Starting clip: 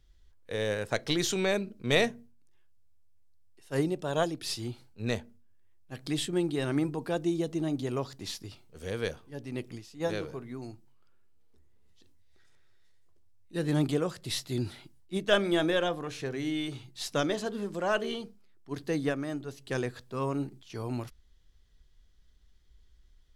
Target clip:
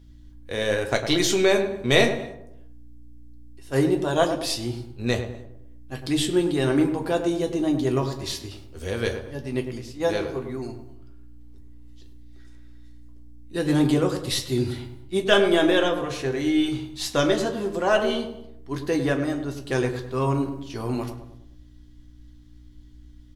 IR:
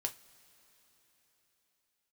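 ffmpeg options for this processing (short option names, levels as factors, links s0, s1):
-filter_complex "[0:a]aeval=exprs='val(0)+0.00178*(sin(2*PI*60*n/s)+sin(2*PI*2*60*n/s)/2+sin(2*PI*3*60*n/s)/3+sin(2*PI*4*60*n/s)/4+sin(2*PI*5*60*n/s)/5)':c=same,asplit=2[s0][s1];[s1]adelay=103,lowpass=f=1200:p=1,volume=0.447,asplit=2[s2][s3];[s3]adelay=103,lowpass=f=1200:p=1,volume=0.48,asplit=2[s4][s5];[s5]adelay=103,lowpass=f=1200:p=1,volume=0.48,asplit=2[s6][s7];[s7]adelay=103,lowpass=f=1200:p=1,volume=0.48,asplit=2[s8][s9];[s9]adelay=103,lowpass=f=1200:p=1,volume=0.48,asplit=2[s10][s11];[s11]adelay=103,lowpass=f=1200:p=1,volume=0.48[s12];[s0][s2][s4][s6][s8][s10][s12]amix=inputs=7:normalize=0[s13];[1:a]atrim=start_sample=2205,afade=t=out:st=0.34:d=0.01,atrim=end_sample=15435[s14];[s13][s14]afir=irnorm=-1:irlink=0,volume=2.24"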